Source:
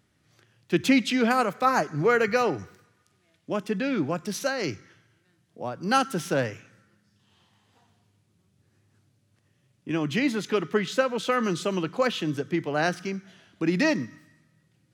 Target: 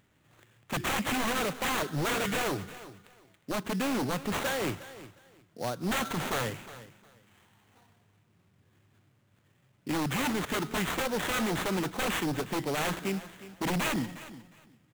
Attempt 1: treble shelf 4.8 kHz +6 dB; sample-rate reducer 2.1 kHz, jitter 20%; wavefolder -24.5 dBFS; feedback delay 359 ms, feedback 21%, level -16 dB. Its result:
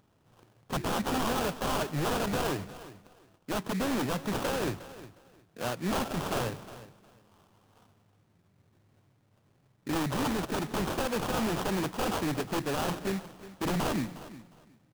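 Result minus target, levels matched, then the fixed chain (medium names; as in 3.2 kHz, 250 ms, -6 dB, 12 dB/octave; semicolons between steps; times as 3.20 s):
sample-rate reducer: distortion +6 dB
treble shelf 4.8 kHz +6 dB; sample-rate reducer 5.1 kHz, jitter 20%; wavefolder -24.5 dBFS; feedback delay 359 ms, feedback 21%, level -16 dB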